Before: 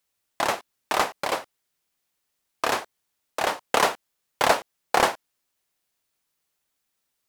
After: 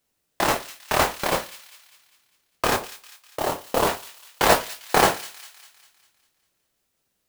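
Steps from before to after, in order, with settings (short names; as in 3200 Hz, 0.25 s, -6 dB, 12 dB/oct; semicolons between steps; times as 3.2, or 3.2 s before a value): 2.74–3.87 median filter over 25 samples; chorus 0.44 Hz, delay 19 ms, depth 4.8 ms; in parallel at -8 dB: sample-and-hold 37×; on the sum: modulation noise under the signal 11 dB; thin delay 0.2 s, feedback 50%, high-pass 2600 Hz, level -12.5 dB; on a send at -18 dB: reverb, pre-delay 52 ms; on the sum: gain +5 dB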